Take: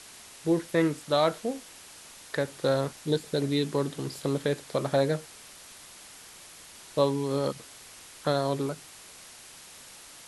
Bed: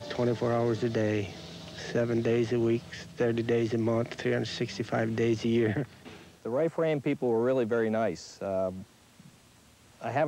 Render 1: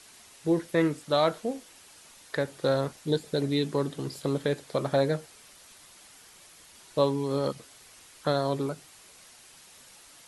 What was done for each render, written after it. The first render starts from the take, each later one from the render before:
broadband denoise 6 dB, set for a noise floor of −49 dBFS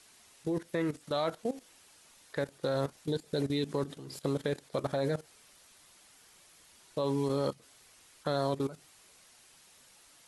output level in coarse steps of 15 dB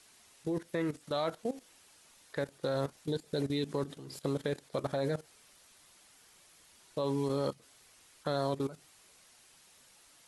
level −1.5 dB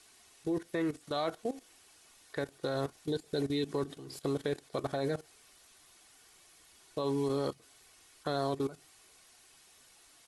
comb filter 2.7 ms, depth 33%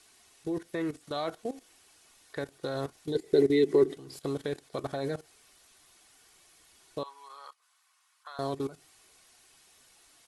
0:03.15–0:03.97: hollow resonant body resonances 380/2,000 Hz, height 17 dB, ringing for 35 ms
0:07.03–0:08.39: four-pole ladder high-pass 930 Hz, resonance 55%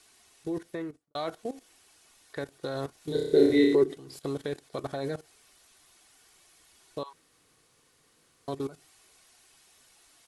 0:00.61–0:01.15: fade out and dull
0:02.98–0:03.75: flutter between parallel walls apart 5.4 metres, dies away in 0.79 s
0:07.13–0:08.48: fill with room tone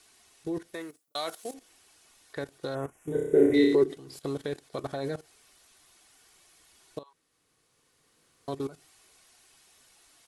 0:00.74–0:01.54: RIAA equalisation recording
0:02.75–0:03.54: Butterworth band-reject 4,300 Hz, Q 0.98
0:06.99–0:08.52: fade in, from −14 dB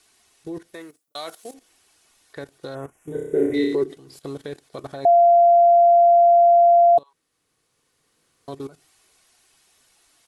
0:05.05–0:06.98: beep over 690 Hz −10 dBFS

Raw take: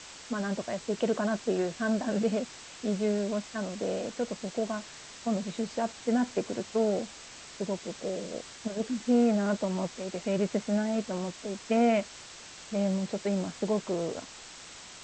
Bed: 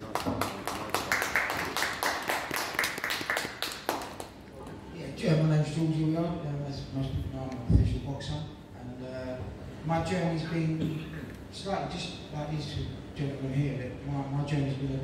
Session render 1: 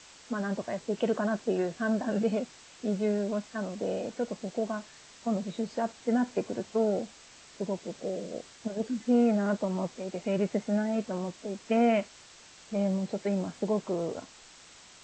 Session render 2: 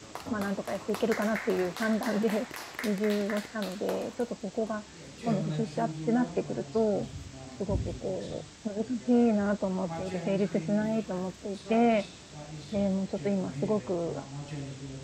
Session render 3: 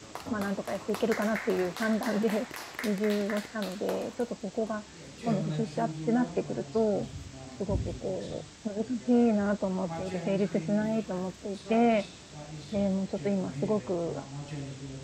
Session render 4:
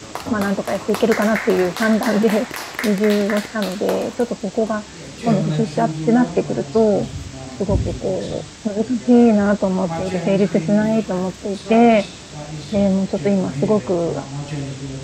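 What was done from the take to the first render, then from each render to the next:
noise reduction from a noise print 6 dB
mix in bed −9 dB
no processing that can be heard
level +12 dB; brickwall limiter −3 dBFS, peak gain reduction 0.5 dB

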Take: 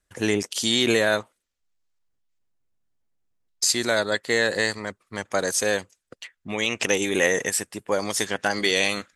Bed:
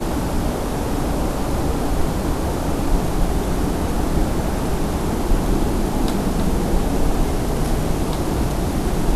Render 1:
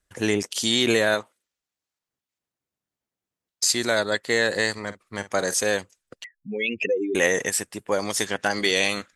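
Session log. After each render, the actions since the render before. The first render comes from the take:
0:01.14–0:03.70: high-pass filter 180 Hz 6 dB per octave
0:04.72–0:05.54: double-tracking delay 49 ms −14 dB
0:06.24–0:07.15: expanding power law on the bin magnitudes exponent 3.7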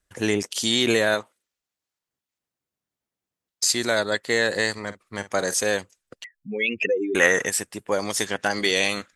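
0:06.51–0:07.46: parametric band 1,400 Hz +11 dB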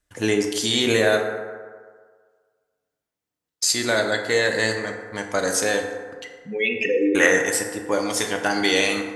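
feedback delay network reverb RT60 1.7 s, low-frequency decay 0.75×, high-frequency decay 0.4×, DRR 2.5 dB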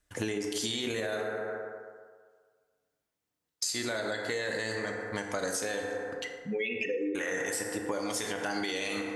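brickwall limiter −13 dBFS, peak gain reduction 10.5 dB
downward compressor 6 to 1, threshold −30 dBFS, peak gain reduction 12 dB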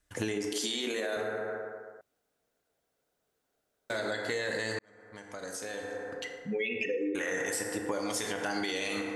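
0:00.53–0:01.17: high-pass filter 220 Hz 24 dB per octave
0:02.01–0:03.90: fill with room tone
0:04.79–0:06.50: fade in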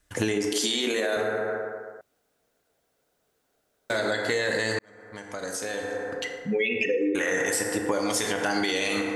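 level +7 dB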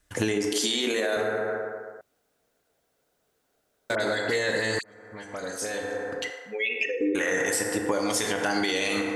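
0:03.95–0:05.78: all-pass dispersion highs, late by 53 ms, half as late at 2,400 Hz
0:06.30–0:07.01: high-pass filter 620 Hz

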